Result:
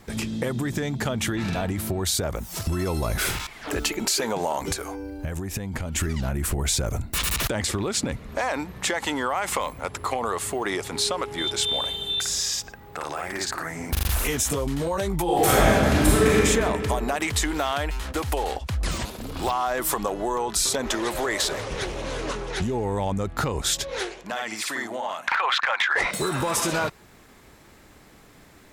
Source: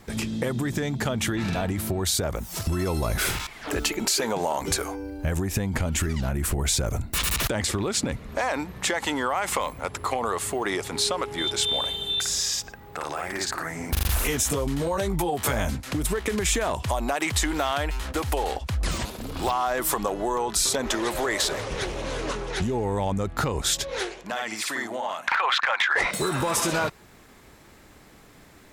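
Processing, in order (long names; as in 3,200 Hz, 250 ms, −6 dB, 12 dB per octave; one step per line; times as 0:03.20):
0:04.72–0:05.96: downward compressor 4 to 1, threshold −27 dBFS, peak gain reduction 6.5 dB
0:15.24–0:16.35: thrown reverb, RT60 2.4 s, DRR −8.5 dB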